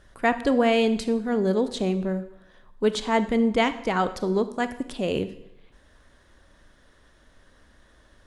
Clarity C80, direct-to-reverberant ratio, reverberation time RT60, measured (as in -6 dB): 16.0 dB, 11.5 dB, 0.85 s